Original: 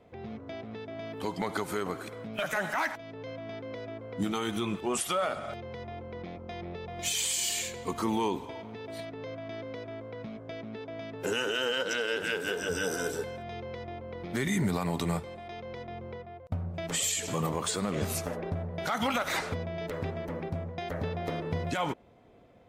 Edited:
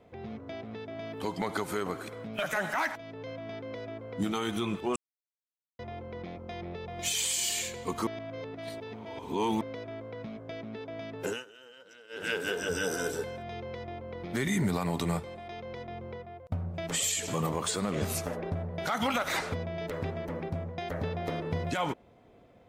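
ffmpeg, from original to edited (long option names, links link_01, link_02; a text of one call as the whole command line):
ffmpeg -i in.wav -filter_complex "[0:a]asplit=7[link_01][link_02][link_03][link_04][link_05][link_06][link_07];[link_01]atrim=end=4.96,asetpts=PTS-STARTPTS,afade=type=out:start_time=4.956:duration=0.004:curve=hsin[link_08];[link_02]atrim=start=4.96:end=5.79,asetpts=PTS-STARTPTS,volume=0[link_09];[link_03]atrim=start=5.79:end=8.072,asetpts=PTS-STARTPTS,afade=type=in:duration=0.004:curve=hsin[link_10];[link_04]atrim=start=8.068:end=9.612,asetpts=PTS-STARTPTS,areverse[link_11];[link_05]atrim=start=9.608:end=11.45,asetpts=PTS-STARTPTS,afade=type=out:start_time=1.632:duration=0.21:silence=0.0707946[link_12];[link_06]atrim=start=11.45:end=12.09,asetpts=PTS-STARTPTS,volume=-23dB[link_13];[link_07]atrim=start=12.09,asetpts=PTS-STARTPTS,afade=type=in:duration=0.21:silence=0.0707946[link_14];[link_08][link_09][link_10]concat=n=3:v=0:a=1[link_15];[link_15][link_11]acrossfade=duration=0.004:curve1=hsin:curve2=hsin[link_16];[link_12][link_13][link_14]concat=n=3:v=0:a=1[link_17];[link_16][link_17]acrossfade=duration=0.004:curve1=hsin:curve2=hsin" out.wav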